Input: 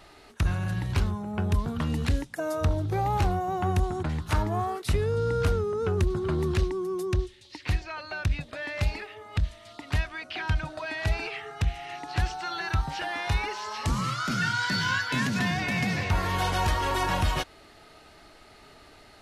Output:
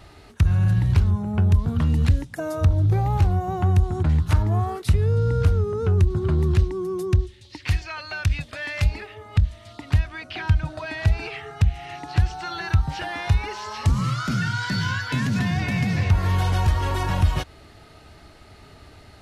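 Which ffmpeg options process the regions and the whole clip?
-filter_complex "[0:a]asettb=1/sr,asplit=3[a][b][c];[a]atrim=end=7.654[d];[b]atrim=start=7.65:end=8.84,asetpts=PTS-STARTPTS,afade=t=in:d=0.004:c=qsin,afade=t=out:st=1.186:d=0.004:c=qsin,tiltshelf=f=970:g=-6,bandreject=f=3.9k:w=17[e];[c]atrim=start=8.836[f];[d][e]acrossfade=d=0.004:c1=hsin:c2=qsin[g];[g][f]acrossfade=d=0.004:c1=qsin:c2=hsin,acompressor=threshold=-26dB:ratio=6,equalizer=f=84:w=0.6:g=13,volume=1.5dB"

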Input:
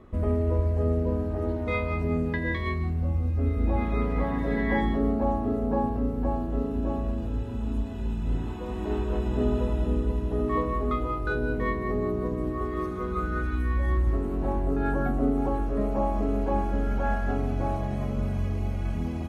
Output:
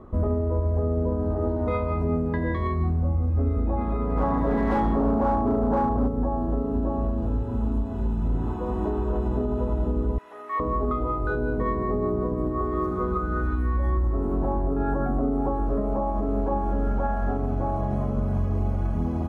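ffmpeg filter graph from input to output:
-filter_complex "[0:a]asettb=1/sr,asplit=3[a][b][c];[a]atrim=end=4.174[d];[b]atrim=start=4.17:end=6.08,asetpts=PTS-STARTPTS,afade=t=in:d=0.004:c=qsin,afade=t=out:st=1.906:d=0.004:c=qsin,equalizer=f=1k:t=o:w=0.82:g=3.5,asoftclip=type=hard:threshold=-22.5dB[e];[c]atrim=start=6.076[f];[d][e]acrossfade=d=0.004:c1=hsin:c2=qsin[g];[g][f]acrossfade=d=0.004:c1=qsin:c2=hsin,asettb=1/sr,asplit=3[h][i][j];[h]atrim=end=10.184[k];[i]atrim=start=10.18:end=10.6,asetpts=PTS-STARTPTS,afade=t=in:d=0.004:c=qsin,afade=t=out:st=0.416:d=0.004:c=qsin,highpass=1.4k,equalizer=f=2.1k:w=2.6:g=11[l];[j]atrim=start=10.596[m];[k][l]acrossfade=d=0.004:c1=hsin:c2=qsin[n];[n][m]acrossfade=d=0.004:c1=qsin:c2=hsin,highshelf=f=1.6k:t=q:w=1.5:g=-10,alimiter=limit=-21.5dB:level=0:latency=1:release=157,volume=5dB"

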